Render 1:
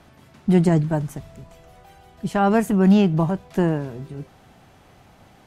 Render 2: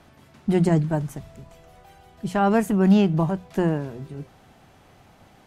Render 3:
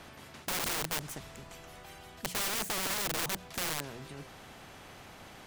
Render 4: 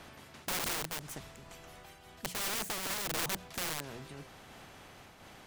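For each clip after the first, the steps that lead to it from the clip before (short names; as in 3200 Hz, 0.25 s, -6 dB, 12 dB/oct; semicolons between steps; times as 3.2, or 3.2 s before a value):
notches 60/120/180 Hz; gain -1.5 dB
self-modulated delay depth 0.2 ms; wrapped overs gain 20 dB; spectral compressor 2:1; gain +3 dB
noise-modulated level, depth 55%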